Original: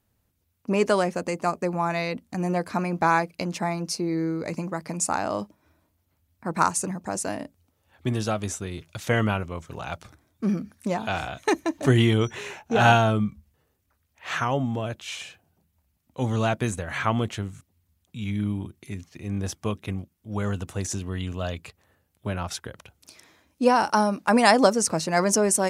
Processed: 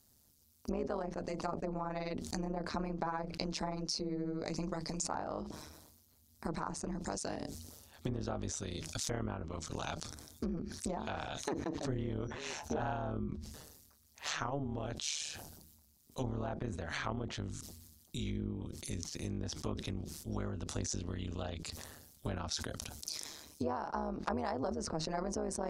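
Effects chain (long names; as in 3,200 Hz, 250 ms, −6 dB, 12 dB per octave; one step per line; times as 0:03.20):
treble cut that deepens with the level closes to 1,400 Hz, closed at −21.5 dBFS
high shelf with overshoot 3,500 Hz +11 dB, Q 1.5
downward compressor 5 to 1, threshold −36 dBFS, peak gain reduction 19.5 dB
amplitude modulation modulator 150 Hz, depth 85%
level that may fall only so fast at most 43 dB per second
level +3 dB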